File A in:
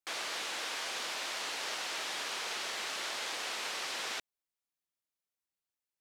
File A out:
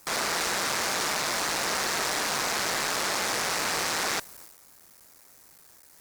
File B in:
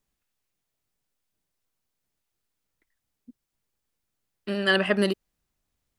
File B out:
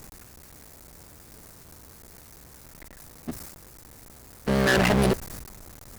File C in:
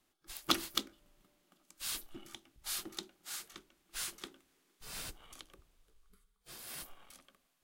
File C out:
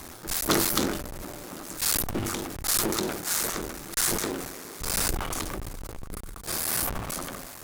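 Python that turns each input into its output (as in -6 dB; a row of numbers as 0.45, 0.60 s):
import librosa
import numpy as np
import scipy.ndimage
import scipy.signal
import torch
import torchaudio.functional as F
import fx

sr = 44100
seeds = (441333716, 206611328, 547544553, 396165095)

y = fx.cycle_switch(x, sr, every=3, mode='muted')
y = fx.peak_eq(y, sr, hz=3100.0, db=-10.0, octaves=0.84)
y = fx.power_curve(y, sr, exponent=0.5)
y = fx.transient(y, sr, attack_db=-1, sustain_db=8)
y = fx.tube_stage(y, sr, drive_db=18.0, bias=0.4)
y = y * 10.0 ** (-30 / 20.0) / np.sqrt(np.mean(np.square(y)))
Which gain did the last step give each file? +9.0, +2.5, +8.5 dB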